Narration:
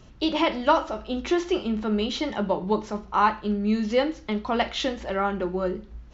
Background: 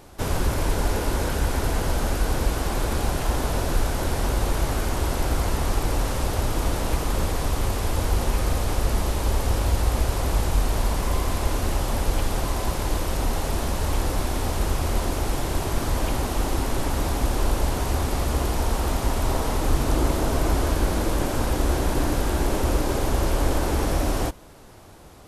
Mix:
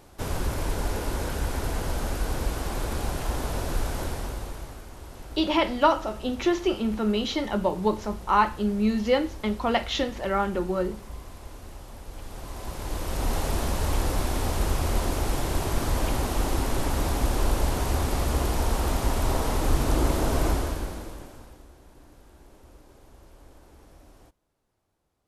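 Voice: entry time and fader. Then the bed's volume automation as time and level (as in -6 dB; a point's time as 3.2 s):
5.15 s, 0.0 dB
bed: 4.01 s -5 dB
4.86 s -18.5 dB
12.05 s -18.5 dB
13.34 s -1.5 dB
20.47 s -1.5 dB
21.72 s -29.5 dB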